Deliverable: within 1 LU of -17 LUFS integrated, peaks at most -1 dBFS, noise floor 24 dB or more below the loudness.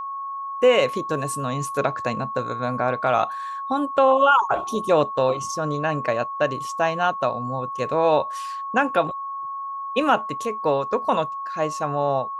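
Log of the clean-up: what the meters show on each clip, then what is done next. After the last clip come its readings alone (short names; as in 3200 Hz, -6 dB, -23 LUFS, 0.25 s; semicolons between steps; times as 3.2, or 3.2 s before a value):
steady tone 1100 Hz; tone level -28 dBFS; loudness -23.0 LUFS; peak -6.0 dBFS; loudness target -17.0 LUFS
-> notch 1100 Hz, Q 30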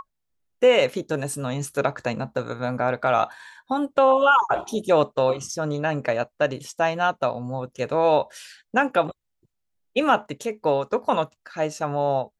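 steady tone none; loudness -23.5 LUFS; peak -6.5 dBFS; loudness target -17.0 LUFS
-> gain +6.5 dB; limiter -1 dBFS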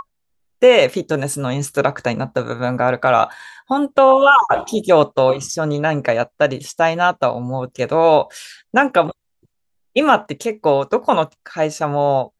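loudness -17.0 LUFS; peak -1.0 dBFS; noise floor -71 dBFS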